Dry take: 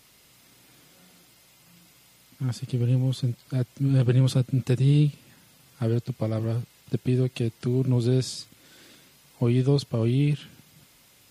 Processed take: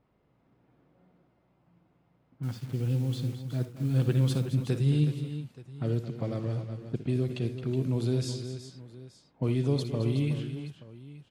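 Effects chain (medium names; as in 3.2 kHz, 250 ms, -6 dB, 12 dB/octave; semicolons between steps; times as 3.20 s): level-controlled noise filter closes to 830 Hz, open at -19.5 dBFS; 2.43–4.46 s: word length cut 8-bit, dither none; multi-tap echo 60/79/218/370/877 ms -12.5/-18/-11.5/-10.5/-19 dB; trim -5.5 dB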